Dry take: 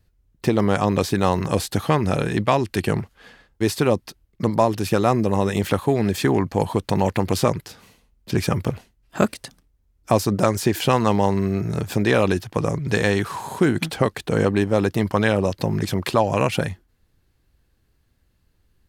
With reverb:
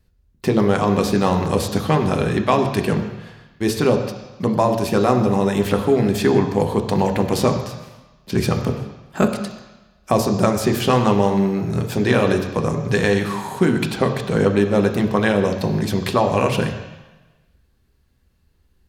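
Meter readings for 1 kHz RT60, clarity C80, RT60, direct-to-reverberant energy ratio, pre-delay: 1.2 s, 9.0 dB, 1.1 s, 4.0 dB, 3 ms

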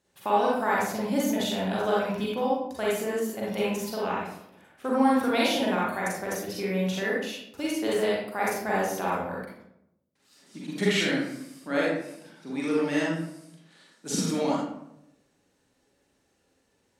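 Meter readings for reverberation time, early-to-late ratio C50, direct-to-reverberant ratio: 0.80 s, −1.5 dB, −6.0 dB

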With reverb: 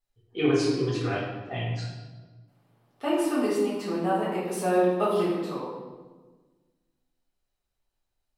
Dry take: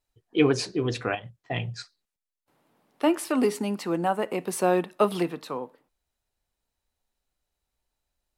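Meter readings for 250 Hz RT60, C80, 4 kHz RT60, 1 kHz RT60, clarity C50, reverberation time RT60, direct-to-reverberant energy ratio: 1.8 s, 3.0 dB, 0.95 s, 1.2 s, 0.5 dB, 1.4 s, −8.0 dB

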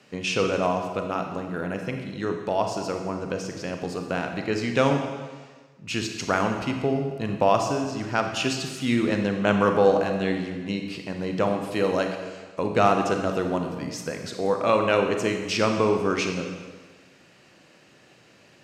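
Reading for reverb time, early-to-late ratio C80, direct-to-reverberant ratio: 1.4 s, 7.0 dB, 4.0 dB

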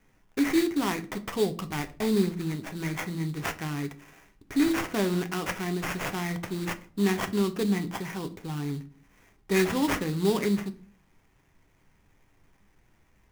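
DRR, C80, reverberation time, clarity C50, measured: 8.5 dB, 22.0 dB, 0.45 s, 18.0 dB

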